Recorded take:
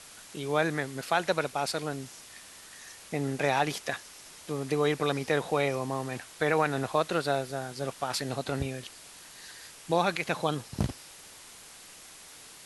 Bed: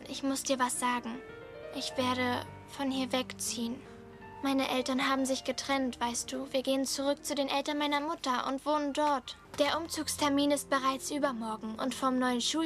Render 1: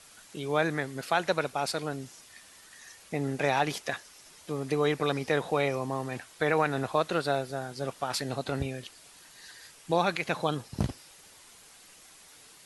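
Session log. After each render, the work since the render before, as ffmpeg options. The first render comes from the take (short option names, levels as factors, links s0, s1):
-af "afftdn=nr=6:nf=-50"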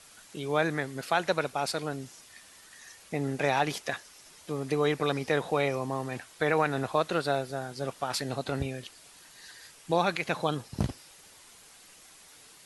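-af anull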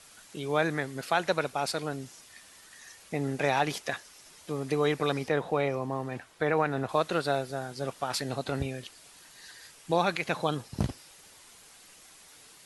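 -filter_complex "[0:a]asettb=1/sr,asplit=3[s0][s1][s2];[s0]atrim=end=5.284[s3];[s1]atrim=start=5.28:end=6.89,asetpts=PTS-STARTPTS,afade=t=in:d=0.004:c=qsin,afade=t=out:st=1.606:d=0.004:c=qsin,highshelf=f=3000:g=-9.5[s4];[s2]atrim=start=6.886[s5];[s3][s4]acrossfade=d=0.004:c1=hsin:c2=qsin[s6];[s6][s5]acrossfade=d=0.004:c1=qsin:c2=hsin"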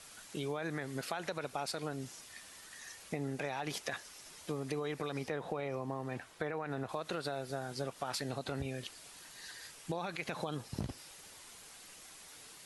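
-af "alimiter=limit=0.0944:level=0:latency=1:release=67,acompressor=threshold=0.02:ratio=6"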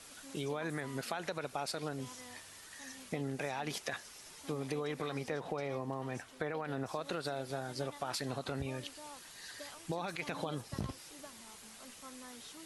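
-filter_complex "[1:a]volume=0.075[s0];[0:a][s0]amix=inputs=2:normalize=0"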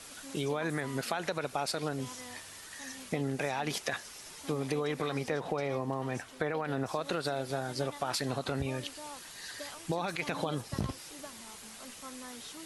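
-af "volume=1.78"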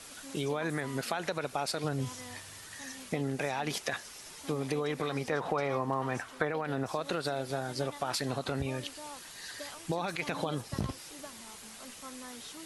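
-filter_complex "[0:a]asettb=1/sr,asplit=3[s0][s1][s2];[s0]atrim=end=1.844[s3];[s1]atrim=start=1.84:end=2.86,asetpts=PTS-STARTPTS,afade=t=in:d=0.004:c=qsin,afade=t=out:st=1.016:d=0.004:c=qsin,equalizer=f=110:w=1.5:g=9[s4];[s2]atrim=start=2.856[s5];[s3][s4]acrossfade=d=0.004:c1=hsin:c2=qsin[s6];[s6][s5]acrossfade=d=0.004:c1=qsin:c2=hsin,asettb=1/sr,asplit=3[s7][s8][s9];[s7]atrim=end=5.324[s10];[s8]atrim=start=5.32:end=6.45,asetpts=PTS-STARTPTS,afade=t=in:d=0.004:c=qsin,afade=t=out:st=1.126:d=0.004:c=qsin,equalizer=f=1200:t=o:w=1.2:g=7.5[s11];[s9]atrim=start=6.446[s12];[s10][s11]acrossfade=d=0.004:c1=hsin:c2=qsin[s13];[s13][s12]acrossfade=d=0.004:c1=qsin:c2=hsin"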